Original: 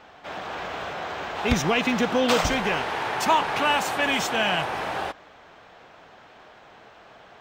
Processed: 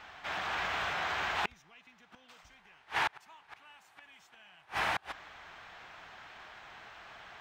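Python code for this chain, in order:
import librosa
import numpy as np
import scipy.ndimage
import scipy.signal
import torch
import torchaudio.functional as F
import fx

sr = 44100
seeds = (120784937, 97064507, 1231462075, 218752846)

y = fx.gate_flip(x, sr, shuts_db=-17.0, range_db=-34)
y = fx.graphic_eq_10(y, sr, hz=(125, 250, 500, 2000), db=(-4, -7, -10, 3))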